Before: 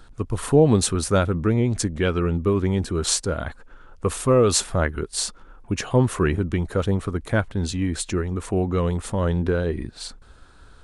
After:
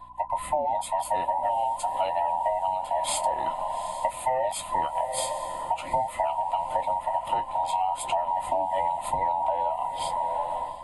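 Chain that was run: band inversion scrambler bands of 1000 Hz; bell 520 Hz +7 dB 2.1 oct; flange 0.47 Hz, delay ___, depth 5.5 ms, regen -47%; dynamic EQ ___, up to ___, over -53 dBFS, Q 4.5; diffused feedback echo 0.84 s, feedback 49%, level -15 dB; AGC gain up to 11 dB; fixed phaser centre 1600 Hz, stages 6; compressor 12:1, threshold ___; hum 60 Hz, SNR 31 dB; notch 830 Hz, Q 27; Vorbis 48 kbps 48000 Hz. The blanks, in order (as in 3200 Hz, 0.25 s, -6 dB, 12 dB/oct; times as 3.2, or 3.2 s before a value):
8.7 ms, 3600 Hz, -3 dB, -22 dBFS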